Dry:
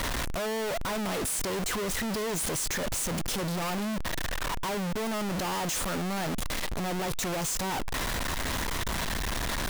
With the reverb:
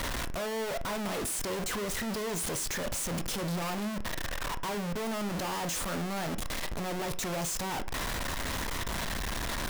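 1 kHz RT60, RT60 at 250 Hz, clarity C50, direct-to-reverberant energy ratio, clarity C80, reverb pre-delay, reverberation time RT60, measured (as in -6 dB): 0.40 s, 0.40 s, 18.0 dB, 10.5 dB, 24.0 dB, 24 ms, 0.40 s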